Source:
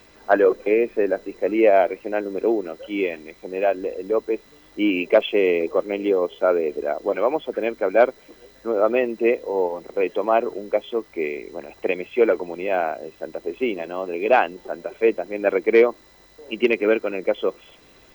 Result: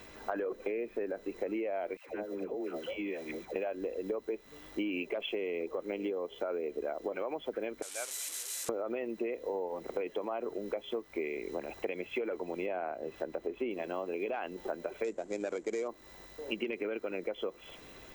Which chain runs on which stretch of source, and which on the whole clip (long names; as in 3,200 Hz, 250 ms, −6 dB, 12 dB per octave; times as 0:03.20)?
0:01.97–0:03.56: high-pass filter 51 Hz + downward compressor 12 to 1, threshold −32 dBFS + all-pass dispersion lows, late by 117 ms, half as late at 660 Hz
0:07.82–0:08.69: linear delta modulator 64 kbit/s, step −22.5 dBFS + resonant band-pass 8,000 Hz, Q 1.5
0:12.66–0:13.71: high-shelf EQ 2,900 Hz −10 dB + one half of a high-frequency compander encoder only
0:15.04–0:15.88: running median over 15 samples + downward expander −39 dBFS + low-pass with resonance 7,400 Hz, resonance Q 7.8
whole clip: parametric band 4,800 Hz −4.5 dB 0.4 octaves; brickwall limiter −14.5 dBFS; downward compressor 10 to 1, threshold −32 dBFS